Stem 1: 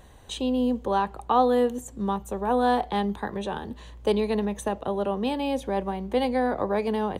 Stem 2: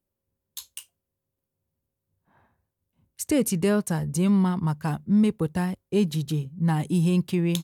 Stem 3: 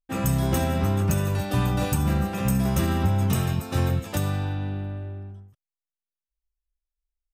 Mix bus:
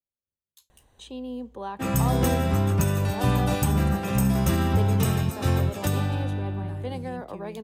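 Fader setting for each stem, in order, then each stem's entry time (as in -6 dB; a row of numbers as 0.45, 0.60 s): -10.5, -19.0, +0.5 dB; 0.70, 0.00, 1.70 s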